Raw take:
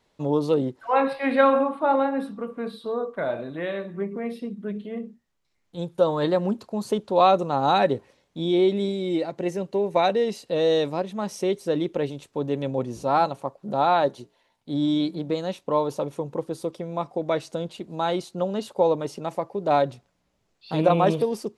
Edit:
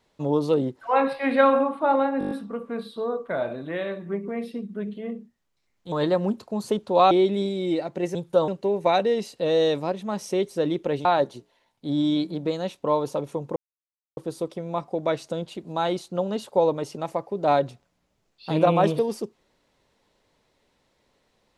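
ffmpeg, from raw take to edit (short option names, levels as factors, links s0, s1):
-filter_complex "[0:a]asplit=13[s0][s1][s2][s3][s4][s5][s6][s7][s8][s9][s10][s11][s12];[s0]atrim=end=2.212[s13];[s1]atrim=start=2.188:end=2.212[s14];[s2]atrim=start=2.188:end=2.212[s15];[s3]atrim=start=2.188:end=2.212[s16];[s4]atrim=start=2.188:end=2.212[s17];[s5]atrim=start=2.188:end=2.212[s18];[s6]atrim=start=2.188:end=5.802[s19];[s7]atrim=start=6.128:end=7.322[s20];[s8]atrim=start=8.538:end=9.582[s21];[s9]atrim=start=5.798:end=6.132[s22];[s10]atrim=start=9.578:end=12.152[s23];[s11]atrim=start=13.888:end=16.4,asetpts=PTS-STARTPTS,afade=t=out:st=2.508:d=0.004:c=hsin,apad=pad_dur=0.61[s24];[s12]atrim=start=16.4,asetpts=PTS-STARTPTS,afade=t=in:d=0.004:c=hsin[s25];[s13][s14]acrossfade=d=0.004:c1=hsin:c2=hsin[s26];[s26][s15]acrossfade=d=0.004:c1=hsin:c2=hsin[s27];[s27][s16]acrossfade=d=0.004:c1=hsin:c2=hsin[s28];[s28][s17]acrossfade=d=0.004:c1=hsin:c2=hsin[s29];[s29][s18]acrossfade=d=0.004:c1=hsin:c2=hsin[s30];[s30][s19]acrossfade=d=0.004:c1=hsin:c2=hsin[s31];[s31][s20]acrossfade=d=0.004:c1=hsin:c2=hsin[s32];[s32][s21]acrossfade=d=0.004:c1=hsin:c2=hsin[s33];[s33][s22]acrossfade=d=0.004:c1=hsin:c2=hsin[s34];[s34][s23]acrossfade=d=0.004:c1=hsin:c2=hsin[s35];[s24][s25]concat=n=2:v=0:a=1[s36];[s35][s36]acrossfade=d=0.004:c1=hsin:c2=hsin"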